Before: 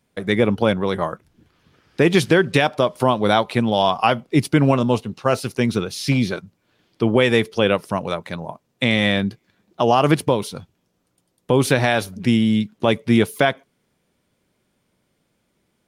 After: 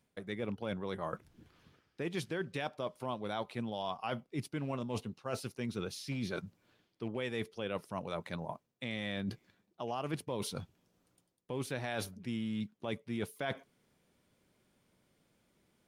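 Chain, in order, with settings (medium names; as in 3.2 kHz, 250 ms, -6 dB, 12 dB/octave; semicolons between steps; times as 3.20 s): rattle on loud lows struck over -18 dBFS, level -27 dBFS; reverse; compression 5:1, threshold -32 dBFS, peak gain reduction 19.5 dB; reverse; trim -4.5 dB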